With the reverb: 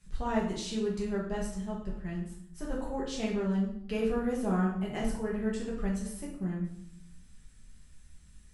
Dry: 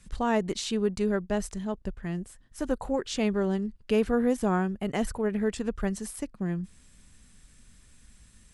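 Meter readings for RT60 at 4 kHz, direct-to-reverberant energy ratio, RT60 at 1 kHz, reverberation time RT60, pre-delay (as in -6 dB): 0.55 s, -4.5 dB, 0.70 s, 0.70 s, 5 ms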